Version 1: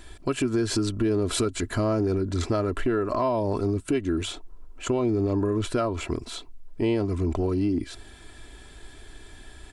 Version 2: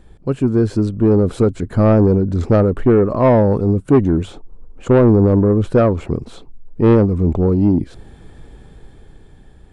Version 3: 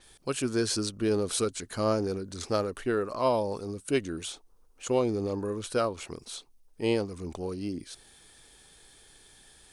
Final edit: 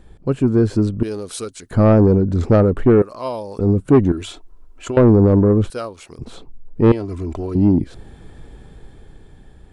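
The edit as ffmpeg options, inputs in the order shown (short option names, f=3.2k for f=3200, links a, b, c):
-filter_complex "[2:a]asplit=3[a][b][c];[0:a]asplit=2[d][e];[1:a]asplit=6[f][g][h][i][j][k];[f]atrim=end=1.032[l];[a]atrim=start=1.028:end=1.712[m];[g]atrim=start=1.708:end=3.022[n];[b]atrim=start=3.018:end=3.592[o];[h]atrim=start=3.588:end=4.122[p];[d]atrim=start=4.118:end=4.972[q];[i]atrim=start=4.968:end=5.702[r];[c]atrim=start=5.698:end=6.192[s];[j]atrim=start=6.188:end=6.922[t];[e]atrim=start=6.918:end=7.552[u];[k]atrim=start=7.548[v];[l][m]acrossfade=d=0.004:c1=hsin:c2=hsin[w];[w][n]acrossfade=d=0.004:c1=hsin:c2=hsin[x];[x][o]acrossfade=d=0.004:c1=hsin:c2=hsin[y];[y][p]acrossfade=d=0.004:c1=hsin:c2=hsin[z];[z][q]acrossfade=d=0.004:c1=hsin:c2=hsin[aa];[aa][r]acrossfade=d=0.004:c1=hsin:c2=hsin[ab];[ab][s]acrossfade=d=0.004:c1=hsin:c2=hsin[ac];[ac][t]acrossfade=d=0.004:c1=hsin:c2=hsin[ad];[ad][u]acrossfade=d=0.004:c1=hsin:c2=hsin[ae];[ae][v]acrossfade=d=0.004:c1=hsin:c2=hsin"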